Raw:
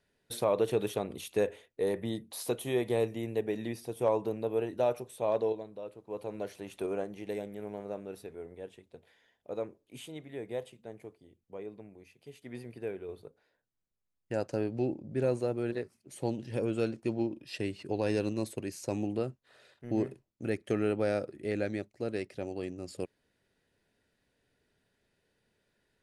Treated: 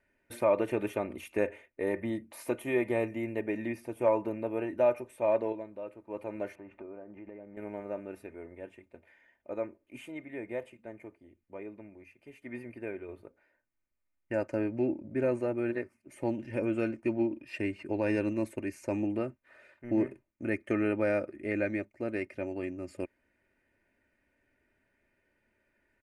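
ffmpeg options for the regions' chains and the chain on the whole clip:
-filter_complex "[0:a]asettb=1/sr,asplit=3[a][b][c];[a]atrim=end=6.554[d];[b]atrim=start=6.55:end=7.57,asetpts=PTS-STARTPTS,afade=t=in:d=0.004:c=qsin,afade=t=out:st=1.016:d=0.004:c=qsin,lowpass=1.4k,acompressor=threshold=-45dB:ratio=4:attack=3.2:release=140:knee=1:detection=peak[e];[c]atrim=start=7.566[f];[d][e]acrossfade=d=0.004:c1=hsin:c2=qsin[g];[g][f]acrossfade=d=0.004:c1=qsin:c2=hsin,highshelf=f=2.9k:t=q:w=3:g=-8,aecho=1:1:3.3:0.56"

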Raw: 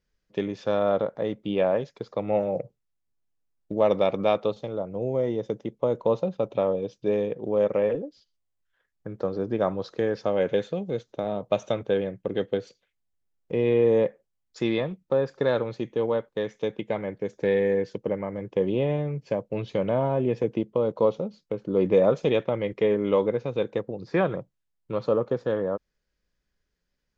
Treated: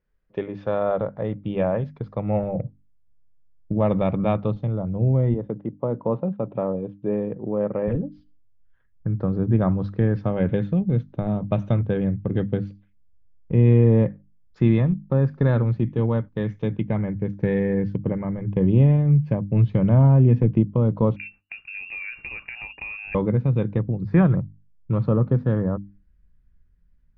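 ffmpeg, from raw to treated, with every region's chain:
-filter_complex "[0:a]asettb=1/sr,asplit=3[a][b][c];[a]atrim=end=5.344[d];[b]atrim=start=5.34:end=7.88,asetpts=PTS-STARTPTS,afade=t=in:d=0.004:c=qsin,afade=t=out:st=2.536:d=0.004:c=qsin,highpass=430,lowpass=2.9k,aemphasis=mode=reproduction:type=riaa,bandreject=f=2.2k:w=20[e];[c]atrim=start=7.876[f];[d][e]acrossfade=d=0.004:c1=hsin:c2=qsin[g];[g][f]acrossfade=d=0.004:c1=qsin:c2=hsin,asettb=1/sr,asplit=3[h][i][j];[h]atrim=end=15.874[k];[i]atrim=start=15.87:end=16.82,asetpts=PTS-STARTPTS,afade=t=in:d=0.004:c=qsin,afade=t=out:st=0.946:d=0.004:c=qsin,highshelf=f=4.2k:g=8,bandreject=f=50:t=h:w=6,bandreject=f=100:t=h:w=6,bandreject=f=150:t=h:w=6,bandreject=f=200:t=h:w=6,bandreject=f=250:t=h:w=6,bandreject=f=300:t=h:w=6[l];[j]atrim=start=16.816[m];[k][l]acrossfade=d=0.004:c1=hsin:c2=qsin[n];[n][m]acrossfade=d=0.004:c1=qsin:c2=hsin,asettb=1/sr,asplit=3[o][p][q];[o]atrim=end=21.164[r];[p]atrim=start=21.16:end=23.15,asetpts=PTS-STARTPTS,afade=t=in:d=0.004:c=qsin,afade=t=out:st=1.986:d=0.004:c=qsin,bandreject=f=50:t=h:w=6,bandreject=f=100:t=h:w=6,bandreject=f=150:t=h:w=6,acompressor=threshold=-27dB:ratio=6:attack=3.2:release=140:knee=1:detection=peak,lowpass=f=2.5k:t=q:w=0.5098,lowpass=f=2.5k:t=q:w=0.6013,lowpass=f=2.5k:t=q:w=0.9,lowpass=f=2.5k:t=q:w=2.563,afreqshift=-2900[s];[q]atrim=start=23.146[t];[r][s]acrossfade=d=0.004:c1=hsin:c2=qsin[u];[u][t]acrossfade=d=0.004:c1=qsin:c2=hsin,asubboost=boost=12:cutoff=140,lowpass=1.9k,bandreject=f=50:t=h:w=6,bandreject=f=100:t=h:w=6,bandreject=f=150:t=h:w=6,bandreject=f=200:t=h:w=6,bandreject=f=250:t=h:w=6,bandreject=f=300:t=h:w=6,volume=2dB"

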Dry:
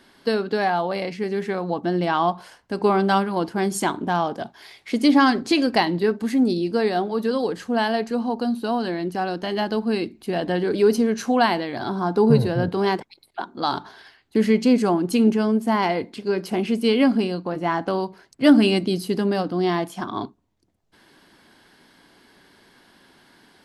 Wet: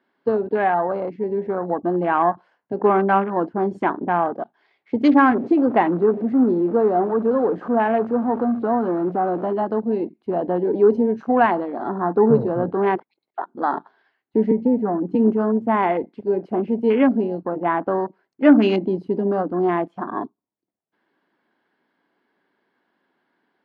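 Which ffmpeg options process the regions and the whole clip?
-filter_complex "[0:a]asettb=1/sr,asplit=3[a][b][c];[a]atrim=end=5.294[d];[b]atrim=start=5.29:end=9.53,asetpts=PTS-STARTPTS,afade=t=in:d=0.004:c=qsin,afade=t=out:st=4.236:d=0.004:c=qsin,aeval=exprs='val(0)+0.5*0.0531*sgn(val(0))':c=same,highshelf=f=2.2k:g=-8[e];[c]atrim=start=9.526[f];[d][e]acrossfade=d=0.004:c1=hsin:c2=qsin[g];[g][f]acrossfade=d=0.004:c1=qsin:c2=hsin,asettb=1/sr,asplit=3[h][i][j];[h]atrim=end=14.514[k];[i]atrim=start=14.51:end=15.15,asetpts=PTS-STARTPTS,afade=t=in:d=0.004:c=qsin,afade=t=out:st=0.636:d=0.004:c=qsin,lowpass=f=1.4k:p=1,aecho=1:1:4.1:0.52,atrim=end_sample=28224,acrossover=split=360|880[l][m][n];[l]acompressor=threshold=-19dB:ratio=4[o];[m]acompressor=threshold=-27dB:ratio=4[p];[n]acompressor=threshold=-38dB:ratio=4[q];[o][p][q]amix=inputs=3:normalize=0[r];[j]atrim=start=15.146[s];[k][r]acrossfade=d=0.004:c1=hsin:c2=qsin[t];[t][s]acrossfade=d=0.004:c1=qsin:c2=hsin,highpass=230,afwtdn=0.0355,lowpass=2k,volume=3dB"

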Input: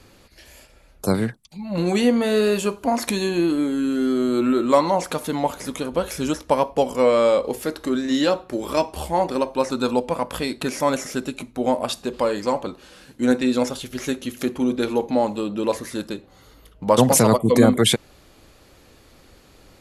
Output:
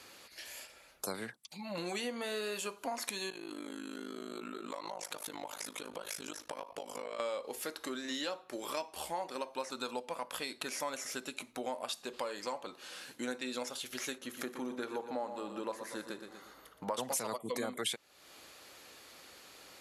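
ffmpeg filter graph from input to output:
-filter_complex "[0:a]asettb=1/sr,asplit=3[a][b][c];[a]atrim=end=3.304[d];[b]atrim=start=3.3:end=7.2,asetpts=PTS-STARTPTS,afade=t=in:d=0.004:c=qsin,afade=t=out:st=3.896:d=0.004:c=qsin,tremolo=f=52:d=0.974,acompressor=threshold=-29dB:ratio=5:attack=3.2:release=140:knee=1:detection=peak[e];[c]atrim=start=7.196[f];[d][e]acrossfade=d=0.004:c1=hsin:c2=qsin[g];[g][f]acrossfade=d=0.004:c1=qsin:c2=hsin,asettb=1/sr,asplit=3[h][i][j];[h]atrim=end=14.184[k];[i]atrim=start=14.18:end=16.94,asetpts=PTS-STARTPTS,afade=t=in:d=0.004:c=qsin,afade=t=out:st=2.756:d=0.004:c=qsin,highshelf=f=2k:t=q:w=1.5:g=-6,aecho=1:1:119|238|357|476:0.299|0.125|0.0527|0.0221,atrim=end_sample=121716[l];[j]atrim=start=16.936[m];[k][l]acrossfade=d=0.004:c1=hsin:c2=qsin[n];[n][m]acrossfade=d=0.004:c1=qsin:c2=hsin,highpass=f=1.1k:p=1,acompressor=threshold=-41dB:ratio=3,volume=1.5dB"

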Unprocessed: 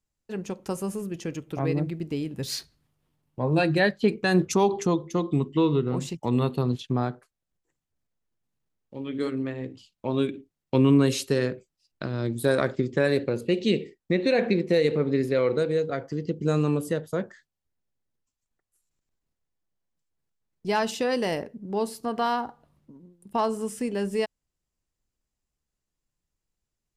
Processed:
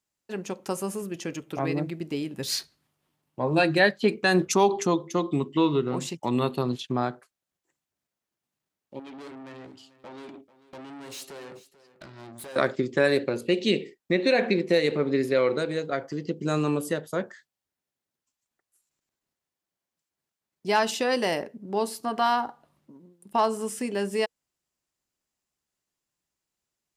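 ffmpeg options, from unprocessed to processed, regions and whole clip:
-filter_complex "[0:a]asettb=1/sr,asplit=3[a][b][c];[a]atrim=end=8.994[d];[b]atrim=start=8.99:end=12.56,asetpts=PTS-STARTPTS,afade=t=in:d=0.004:c=qsin,afade=t=out:st=3.566:d=0.004:c=qsin,acompressor=threshold=-32dB:ratio=2.5:attack=3.2:release=140:knee=1:detection=peak,aeval=exprs='(tanh(100*val(0)+0.45)-tanh(0.45))/100':c=same,aecho=1:1:440:0.133,atrim=end_sample=157437[e];[c]atrim=start=12.556[f];[d][e]acrossfade=d=0.004:c1=hsin:c2=qsin[g];[g][f]acrossfade=d=0.004:c1=qsin:c2=hsin,highpass=f=350:p=1,bandreject=f=470:w=12,volume=3.5dB"

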